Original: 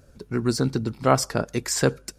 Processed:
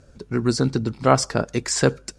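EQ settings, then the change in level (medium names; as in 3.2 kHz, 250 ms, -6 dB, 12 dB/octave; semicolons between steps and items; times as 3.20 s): low-pass 8.9 kHz 24 dB/octave; +2.5 dB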